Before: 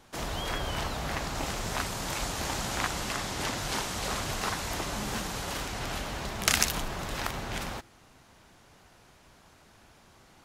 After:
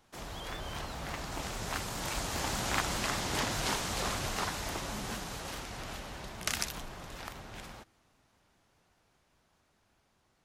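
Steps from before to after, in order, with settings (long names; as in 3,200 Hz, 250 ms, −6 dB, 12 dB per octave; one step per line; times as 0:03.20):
source passing by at 0:03.27, 9 m/s, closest 11 metres
pitch modulation by a square or saw wave saw up 5 Hz, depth 100 cents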